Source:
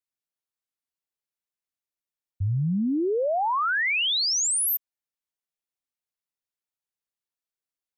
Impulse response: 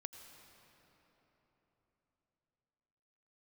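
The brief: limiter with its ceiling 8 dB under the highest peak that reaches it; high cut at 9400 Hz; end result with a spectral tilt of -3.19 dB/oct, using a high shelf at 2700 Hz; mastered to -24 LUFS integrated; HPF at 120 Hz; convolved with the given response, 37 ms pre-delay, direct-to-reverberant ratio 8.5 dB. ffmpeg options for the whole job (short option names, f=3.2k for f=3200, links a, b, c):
-filter_complex "[0:a]highpass=120,lowpass=9.4k,highshelf=f=2.7k:g=8.5,alimiter=limit=-22.5dB:level=0:latency=1,asplit=2[a][b];[1:a]atrim=start_sample=2205,adelay=37[c];[b][c]afir=irnorm=-1:irlink=0,volume=-4.5dB[d];[a][d]amix=inputs=2:normalize=0"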